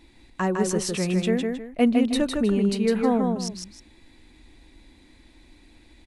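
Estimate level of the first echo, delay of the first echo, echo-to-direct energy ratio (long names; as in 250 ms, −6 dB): −4.0 dB, 157 ms, −3.5 dB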